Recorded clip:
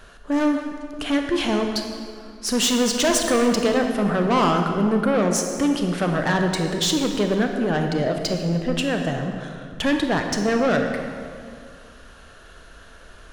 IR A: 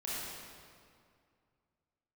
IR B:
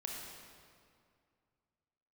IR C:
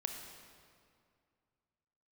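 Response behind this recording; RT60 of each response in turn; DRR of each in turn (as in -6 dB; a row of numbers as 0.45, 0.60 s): C; 2.3, 2.3, 2.3 s; -8.5, -1.5, 3.5 dB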